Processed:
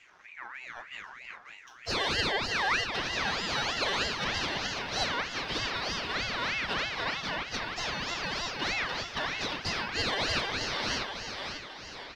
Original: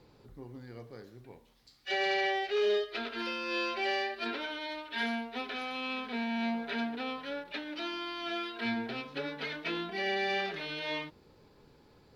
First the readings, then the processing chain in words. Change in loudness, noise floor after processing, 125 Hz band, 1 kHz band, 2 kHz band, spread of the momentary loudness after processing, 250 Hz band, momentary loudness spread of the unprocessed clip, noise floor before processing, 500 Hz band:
+3.5 dB, −50 dBFS, +9.5 dB, +3.0 dB, +4.5 dB, 14 LU, −4.0 dB, 17 LU, −62 dBFS, −3.0 dB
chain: Butterworth low-pass 5,700 Hz 48 dB per octave
dynamic equaliser 1,800 Hz, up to +4 dB, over −47 dBFS, Q 0.76
in parallel at −2.5 dB: downward compressor, threshold −42 dBFS, peak gain reduction 15.5 dB
on the sum: leveller curve on the samples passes 1
flanger 1.1 Hz, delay 2.5 ms, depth 3.2 ms, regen +67%
on a send: repeating echo 544 ms, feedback 51%, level −6 dB
on the sum: ring modulator whose carrier an LFO sweeps 1,800 Hz, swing 35%, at 3.2 Hz
level +2.5 dB

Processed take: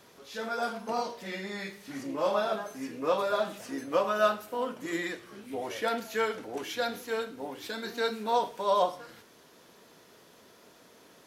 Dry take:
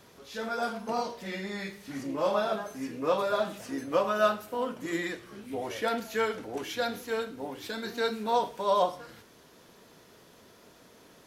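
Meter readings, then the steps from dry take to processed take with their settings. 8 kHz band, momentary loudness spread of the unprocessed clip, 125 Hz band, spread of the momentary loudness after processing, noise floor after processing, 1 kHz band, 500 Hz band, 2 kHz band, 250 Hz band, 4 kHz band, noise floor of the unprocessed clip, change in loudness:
0.0 dB, 11 LU, −3.5 dB, 12 LU, −58 dBFS, 0.0 dB, −0.5 dB, 0.0 dB, −2.0 dB, 0.0 dB, −57 dBFS, −0.5 dB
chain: low-shelf EQ 120 Hz −10.5 dB

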